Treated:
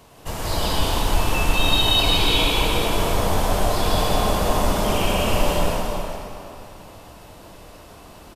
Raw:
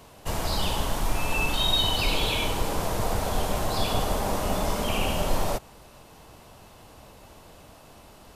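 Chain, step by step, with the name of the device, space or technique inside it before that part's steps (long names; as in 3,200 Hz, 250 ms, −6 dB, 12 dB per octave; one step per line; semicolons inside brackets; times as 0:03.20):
cave (single-tap delay 357 ms −9.5 dB; convolution reverb RT60 2.7 s, pre-delay 98 ms, DRR −4.5 dB)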